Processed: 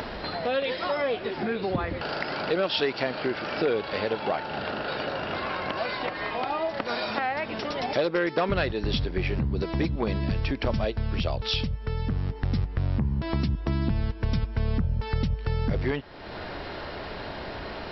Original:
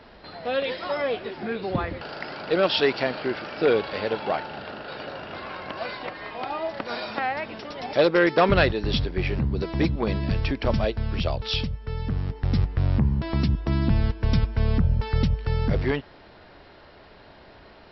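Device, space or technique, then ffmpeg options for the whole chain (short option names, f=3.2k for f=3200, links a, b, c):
upward and downward compression: -af "acompressor=mode=upward:threshold=-23dB:ratio=2.5,acompressor=threshold=-22dB:ratio=4"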